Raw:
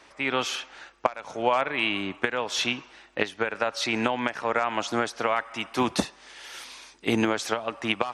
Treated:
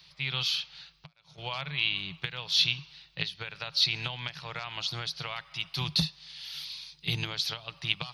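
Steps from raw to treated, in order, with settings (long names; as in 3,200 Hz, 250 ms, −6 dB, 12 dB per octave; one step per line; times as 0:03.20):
0:00.79–0:01.38: downward compressor 20 to 1, threshold −40 dBFS, peak gain reduction 25.5 dB
drawn EQ curve 110 Hz 0 dB, 160 Hz +14 dB, 220 Hz −24 dB, 360 Hz −19 dB, 590 Hz −19 dB, 1,000 Hz −14 dB, 1,700 Hz −13 dB, 4,400 Hz +10 dB, 7,800 Hz −18 dB, 14,000 Hz +9 dB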